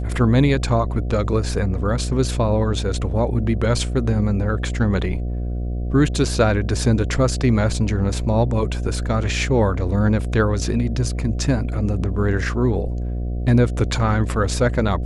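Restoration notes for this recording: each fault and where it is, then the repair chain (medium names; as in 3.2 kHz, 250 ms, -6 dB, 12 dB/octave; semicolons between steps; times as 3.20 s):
buzz 60 Hz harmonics 12 -24 dBFS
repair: de-hum 60 Hz, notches 12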